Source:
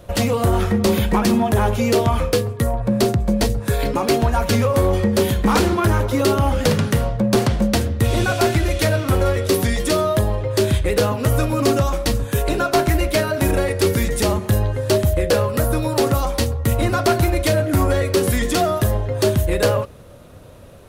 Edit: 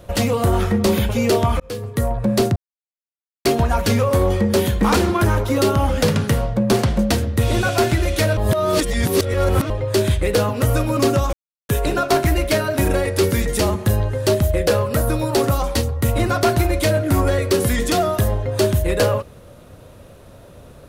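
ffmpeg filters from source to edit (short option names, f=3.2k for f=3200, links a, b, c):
-filter_complex "[0:a]asplit=9[a][b][c][d][e][f][g][h][i];[a]atrim=end=1.092[j];[b]atrim=start=1.718:end=2.23,asetpts=PTS-STARTPTS,afade=t=out:st=0.508:d=0.004:c=hsin[k];[c]atrim=start=2.23:end=3.19,asetpts=PTS-STARTPTS,afade=t=in:d=0.42,afade=t=out:st=0.956:d=0.004:c=hsin[l];[d]atrim=start=3.19:end=4.08,asetpts=PTS-STARTPTS,volume=0[m];[e]atrim=start=4.08:end=9.002,asetpts=PTS-STARTPTS,afade=t=in:d=0.004:c=hsin[n];[f]atrim=start=8.998:end=10.332,asetpts=PTS-STARTPTS,areverse[o];[g]atrim=start=10.328:end=11.96,asetpts=PTS-STARTPTS,afade=t=out:st=1.628:d=0.004:c=hsin[p];[h]atrim=start=11.96:end=12.32,asetpts=PTS-STARTPTS,volume=0[q];[i]atrim=start=12.32,asetpts=PTS-STARTPTS,afade=t=in:d=0.004:c=hsin[r];[k][l][m][n]concat=n=4:v=0:a=1[s];[j][s]acrossfade=d=0.004:c1=hsin:c2=hsin[t];[t][o]acrossfade=d=0.004:c1=hsin:c2=hsin[u];[p][q][r]concat=n=3:v=0:a=1[v];[u][v]acrossfade=d=0.004:c1=hsin:c2=hsin"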